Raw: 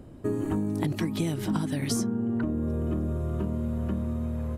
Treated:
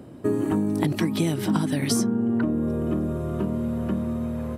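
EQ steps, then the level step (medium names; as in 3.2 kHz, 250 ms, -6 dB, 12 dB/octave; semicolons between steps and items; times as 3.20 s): high-pass 130 Hz 12 dB/octave; band-stop 6.8 kHz, Q 12; +5.5 dB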